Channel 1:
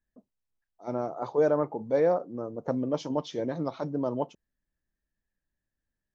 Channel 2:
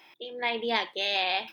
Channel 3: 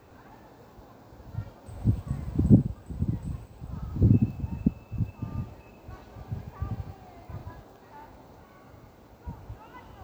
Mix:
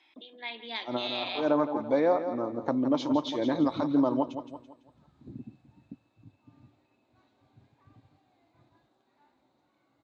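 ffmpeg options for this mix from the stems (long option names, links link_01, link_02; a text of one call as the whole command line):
ffmpeg -i stem1.wav -i stem2.wav -i stem3.wav -filter_complex "[0:a]equalizer=frequency=1000:width_type=o:width=0.75:gain=5.5,volume=3dB,asplit=2[link_01][link_02];[link_02]volume=-11dB[link_03];[1:a]volume=-12dB,asplit=3[link_04][link_05][link_06];[link_05]volume=-16.5dB[link_07];[2:a]flanger=delay=4.9:depth=3.2:regen=-51:speed=0.25:shape=triangular,adelay=1250,volume=-15.5dB[link_08];[link_06]apad=whole_len=271068[link_09];[link_01][link_09]sidechaincompress=threshold=-48dB:ratio=8:attack=8.1:release=163[link_10];[link_03][link_07]amix=inputs=2:normalize=0,aecho=0:1:167|334|501|668|835:1|0.37|0.137|0.0507|0.0187[link_11];[link_10][link_04][link_08][link_11]amix=inputs=4:normalize=0,highpass=140,equalizer=frequency=180:width_type=q:width=4:gain=-8,equalizer=frequency=290:width_type=q:width=4:gain=8,equalizer=frequency=450:width_type=q:width=4:gain=-6,equalizer=frequency=2200:width_type=q:width=4:gain=4,equalizer=frequency=3800:width_type=q:width=4:gain=10,equalizer=frequency=5600:width_type=q:width=4:gain=-4,lowpass=frequency=8600:width=0.5412,lowpass=frequency=8600:width=1.3066,alimiter=limit=-14.5dB:level=0:latency=1:release=321" out.wav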